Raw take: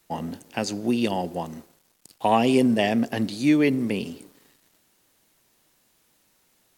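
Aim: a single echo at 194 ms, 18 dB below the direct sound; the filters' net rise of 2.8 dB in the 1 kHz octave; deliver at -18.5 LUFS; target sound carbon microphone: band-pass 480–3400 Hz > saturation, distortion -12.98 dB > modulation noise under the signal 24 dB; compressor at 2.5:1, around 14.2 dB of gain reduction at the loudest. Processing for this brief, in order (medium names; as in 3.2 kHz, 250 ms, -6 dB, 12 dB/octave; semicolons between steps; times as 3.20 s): peaking EQ 1 kHz +4.5 dB; compression 2.5:1, threshold -36 dBFS; band-pass 480–3400 Hz; delay 194 ms -18 dB; saturation -29.5 dBFS; modulation noise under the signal 24 dB; trim +23 dB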